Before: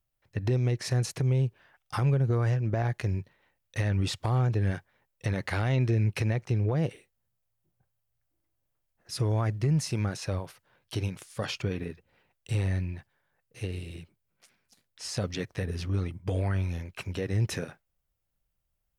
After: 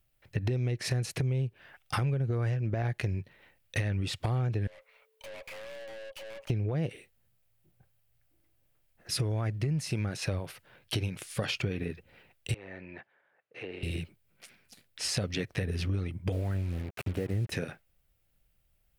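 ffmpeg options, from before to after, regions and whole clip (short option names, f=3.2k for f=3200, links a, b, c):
-filter_complex "[0:a]asettb=1/sr,asplit=3[a][b][c];[a]atrim=end=4.674[d];[b]atrim=start=4.67:end=6.5,asetpts=PTS-STARTPTS,afade=t=in:d=0.004:c=qsin,afade=t=out:st=1.826:d=0.004:c=qsin,acompressor=threshold=-41dB:ratio=3:attack=3.2:release=140:knee=1:detection=peak,afreqshift=440,aeval=exprs='(tanh(355*val(0)+0.45)-tanh(0.45))/355':c=same[e];[c]atrim=start=6.496[f];[d][e]acrossfade=d=0.004:c1=hsin:c2=qsin[g];[g][f]acrossfade=d=0.004:c1=qsin:c2=hsin,asettb=1/sr,asplit=3[h][i][j];[h]atrim=end=12.544[k];[i]atrim=start=12.54:end=13.83,asetpts=PTS-STARTPTS,afade=t=in:d=0.004:c=qsin,afade=t=out:st=1.286:d=0.004:c=qsin,acompressor=threshold=-33dB:ratio=10:attack=3.2:release=140:knee=1:detection=peak,highpass=400,lowpass=2k[l];[j]atrim=start=13.826[m];[k][l]acrossfade=d=0.004:c1=hsin:c2=qsin[n];[n][m]acrossfade=d=0.004:c1=qsin:c2=hsin,asettb=1/sr,asplit=3[o][p][q];[o]atrim=end=16.324[r];[p]atrim=start=16.32:end=17.52,asetpts=PTS-STARTPTS,afade=t=in:d=0.004:c=qsin,afade=t=out:st=1.196:d=0.004:c=qsin,equalizer=f=4k:t=o:w=2:g=-15,aeval=exprs='sgn(val(0))*max(abs(val(0))-0.00355,0)':c=same,acrusher=bits=7:mix=0:aa=0.5[s];[q]atrim=start=17.516[t];[r][s]acrossfade=d=0.004:c1=hsin:c2=qsin[u];[u][t]acrossfade=d=0.004:c1=qsin:c2=hsin,equalizer=f=1k:t=o:w=0.67:g=-5,equalizer=f=2.5k:t=o:w=0.67:g=3,equalizer=f=6.3k:t=o:w=0.67:g=-4,acompressor=threshold=-37dB:ratio=6,volume=8.5dB"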